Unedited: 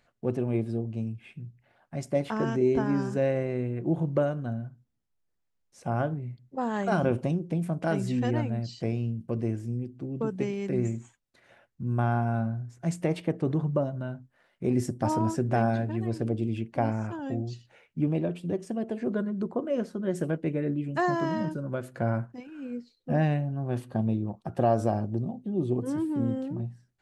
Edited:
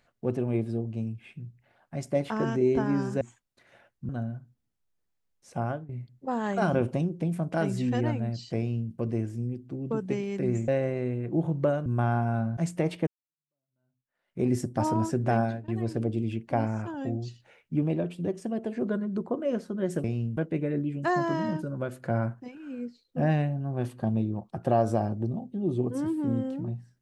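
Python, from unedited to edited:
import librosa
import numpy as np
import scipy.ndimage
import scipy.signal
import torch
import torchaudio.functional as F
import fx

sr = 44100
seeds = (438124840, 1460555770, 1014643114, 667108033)

y = fx.edit(x, sr, fx.swap(start_s=3.21, length_s=1.18, other_s=10.98, other_length_s=0.88),
    fx.fade_out_to(start_s=5.88, length_s=0.31, floor_db=-18.5),
    fx.duplicate(start_s=8.88, length_s=0.33, to_s=20.29),
    fx.cut(start_s=12.57, length_s=0.25),
    fx.fade_in_span(start_s=13.32, length_s=1.33, curve='exp'),
    fx.fade_out_to(start_s=15.65, length_s=0.28, floor_db=-21.5), tone=tone)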